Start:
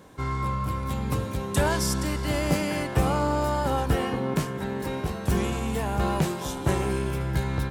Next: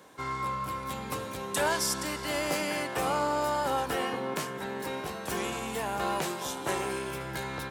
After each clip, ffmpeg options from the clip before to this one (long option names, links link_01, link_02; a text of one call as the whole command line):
ffmpeg -i in.wav -filter_complex "[0:a]highpass=frequency=210:poles=1,lowshelf=frequency=370:gain=-7.5,acrossover=split=280[link_01][link_02];[link_01]alimiter=level_in=12dB:limit=-24dB:level=0:latency=1,volume=-12dB[link_03];[link_03][link_02]amix=inputs=2:normalize=0" out.wav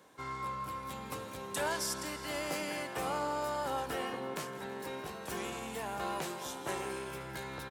ffmpeg -i in.wav -af "aecho=1:1:164|328|492|656|820:0.141|0.0763|0.0412|0.0222|0.012,volume=-6.5dB" out.wav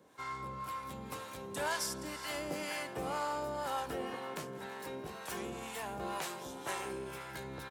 ffmpeg -i in.wav -filter_complex "[0:a]acrossover=split=630[link_01][link_02];[link_01]aeval=exprs='val(0)*(1-0.7/2+0.7/2*cos(2*PI*2*n/s))':channel_layout=same[link_03];[link_02]aeval=exprs='val(0)*(1-0.7/2-0.7/2*cos(2*PI*2*n/s))':channel_layout=same[link_04];[link_03][link_04]amix=inputs=2:normalize=0,volume=1.5dB" out.wav